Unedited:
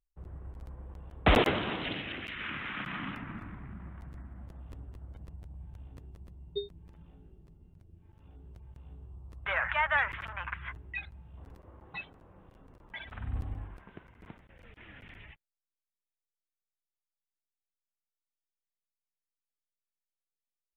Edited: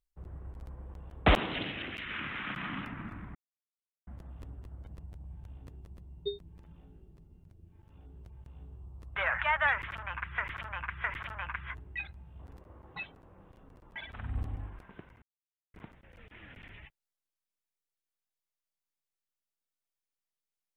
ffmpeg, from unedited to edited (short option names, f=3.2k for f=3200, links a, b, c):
-filter_complex "[0:a]asplit=7[a][b][c][d][e][f][g];[a]atrim=end=1.362[h];[b]atrim=start=1.658:end=3.65,asetpts=PTS-STARTPTS,afade=t=out:st=1.988:d=0.004:c=hsin[i];[c]atrim=start=3.65:end=4.37,asetpts=PTS-STARTPTS,volume=0[j];[d]atrim=start=4.37:end=10.682,asetpts=PTS-STARTPTS,afade=t=in:d=0.004:c=hsin[k];[e]atrim=start=10.018:end=10.682[l];[f]atrim=start=10.018:end=14.2,asetpts=PTS-STARTPTS,afade=t=out:st=4.178:d=0.004:c=hsin,apad=pad_dur=0.52[m];[g]atrim=start=14.2,asetpts=PTS-STARTPTS,afade=t=in:d=0.004:c=hsin[n];[i][j][k]concat=n=3:v=0:a=1[o];[h][o]acrossfade=d=0.004:c1=hsin:c2=hsin[p];[p][l]acrossfade=d=0.004:c1=hsin:c2=hsin[q];[m][n]concat=n=2:v=0:a=1[r];[q][r]acrossfade=d=0.004:c1=hsin:c2=hsin"